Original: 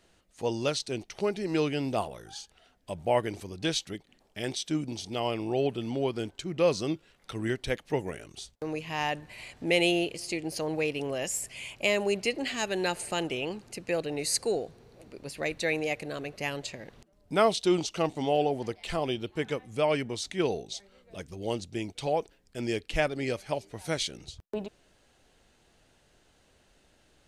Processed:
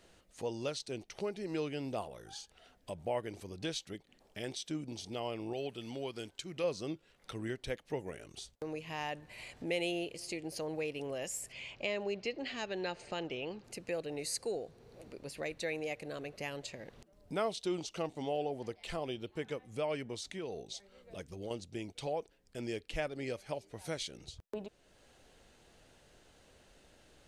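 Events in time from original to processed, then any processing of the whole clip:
0:05.53–0:06.64: tilt shelving filter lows −5 dB, about 1,500 Hz
0:11.52–0:13.64: low-pass filter 5,700 Hz 24 dB per octave
0:20.15–0:21.51: downward compressor 4 to 1, threshold −31 dBFS
whole clip: parametric band 510 Hz +3 dB 0.54 octaves; downward compressor 1.5 to 1, threshold −55 dBFS; level +1 dB

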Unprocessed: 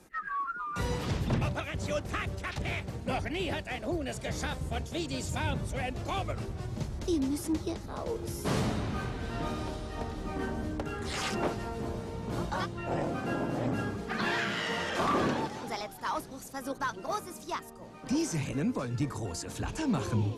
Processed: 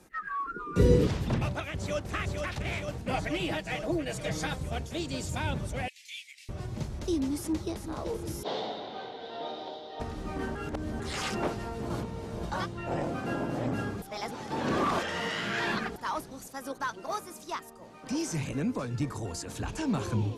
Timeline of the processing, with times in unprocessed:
0:00.46–0:01.07: low shelf with overshoot 580 Hz +10.5 dB, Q 3
0:01.68–0:02.09: delay throw 460 ms, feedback 80%, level −4.5 dB
0:03.13–0:04.56: comb filter 6.3 ms, depth 71%
0:05.88–0:06.49: Butterworth high-pass 2,000 Hz 72 dB per octave
0:07.38–0:07.82: delay throw 380 ms, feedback 55%, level −9.5 dB
0:08.43–0:10.00: loudspeaker in its box 470–4,300 Hz, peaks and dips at 480 Hz +5 dB, 760 Hz +6 dB, 1,200 Hz −10 dB, 1,700 Hz −7 dB, 2,500 Hz −10 dB, 3,600 Hz +9 dB
0:10.55–0:11.00: reverse
0:11.90–0:12.43: reverse
0:14.02–0:15.96: reverse
0:16.47–0:18.28: low-shelf EQ 220 Hz −7 dB

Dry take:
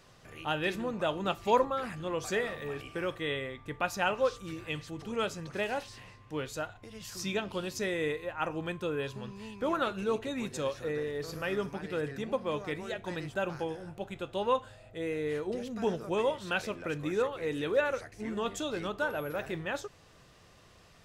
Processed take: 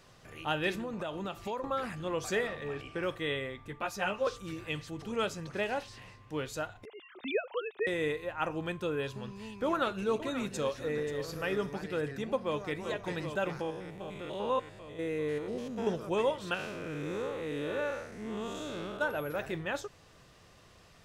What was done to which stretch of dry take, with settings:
0:00.78–0:01.64: downward compressor, threshold −33 dBFS
0:02.47–0:03.03: high-frequency loss of the air 55 metres
0:03.68–0:04.27: string-ensemble chorus
0:05.52–0:06.02: high-shelf EQ 7,200 Hz −6 dB
0:06.85–0:07.87: three sine waves on the formant tracks
0:09.66–0:11.84: single-tap delay 534 ms −12 dB
0:12.44–0:12.85: delay throw 390 ms, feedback 85%, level −7.5 dB
0:13.61–0:15.87: spectrum averaged block by block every 100 ms
0:16.54–0:19.01: spectrum smeared in time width 205 ms

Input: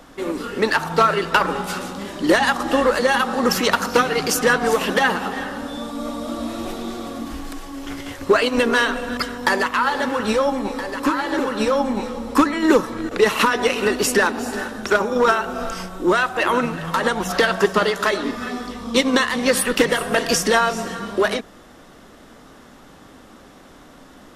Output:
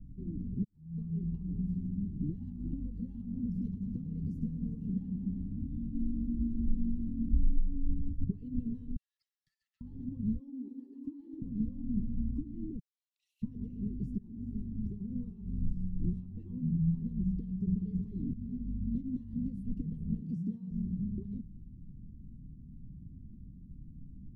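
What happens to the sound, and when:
0:00.64–0:01.22: fade in quadratic
0:03.41–0:05.42: echo with a time of its own for lows and highs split 390 Hz, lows 155 ms, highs 103 ms, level −9 dB
0:05.94–0:08.24: comb filter 4.1 ms, depth 79%
0:08.96–0:09.81: Chebyshev high-pass with heavy ripple 1,300 Hz, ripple 6 dB
0:10.39–0:11.42: Butterworth high-pass 240 Hz 96 dB per octave
0:12.79–0:13.42: Butterworth high-pass 2,500 Hz
0:14.18–0:14.68: fade in, from −16 dB
0:15.44–0:16.19: compressing power law on the bin magnitudes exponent 0.62
0:17.65–0:18.33: envelope flattener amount 100%
0:20.21–0:20.71: high-pass filter 120 Hz 24 dB per octave
whole clip: downward compressor, threshold −21 dBFS; inverse Chebyshev low-pass filter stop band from 560 Hz, stop band 60 dB; level +6.5 dB

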